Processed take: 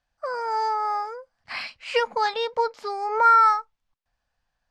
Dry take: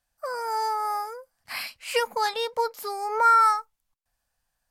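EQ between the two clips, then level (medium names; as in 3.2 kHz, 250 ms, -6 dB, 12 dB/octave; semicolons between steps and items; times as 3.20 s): low-pass 6 kHz 12 dB/octave; distance through air 71 m; +2.5 dB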